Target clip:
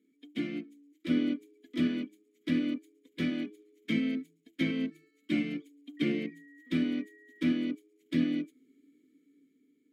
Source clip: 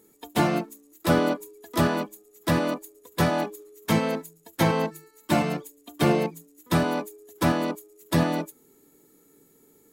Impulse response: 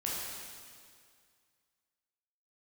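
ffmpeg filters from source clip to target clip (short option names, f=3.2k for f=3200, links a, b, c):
-filter_complex "[0:a]asplit=3[a][b][c];[a]bandpass=f=270:t=q:w=8,volume=0dB[d];[b]bandpass=f=2.29k:t=q:w=8,volume=-6dB[e];[c]bandpass=f=3.01k:t=q:w=8,volume=-9dB[f];[d][e][f]amix=inputs=3:normalize=0,asettb=1/sr,asplit=3[g][h][i];[g]atrim=end=5.974[j];[h]atrim=start=5.97:end=7.47,asetpts=PTS-STARTPTS,afade=t=in:d=0.004:c=qsin,afade=t=out:st=1.496:d=0.004:c=qsin,aeval=exprs='val(0)+0.000891*sin(2*PI*1900*n/s)':c=same[k];[i]atrim=start=7.466[l];[j][k]acrossfade=d=0.004:c1=hsin:c2=qsin[m];[m][l]acrossfade=d=0.004:c1=qsin:c2=hsin,dynaudnorm=f=230:g=9:m=4.5dB"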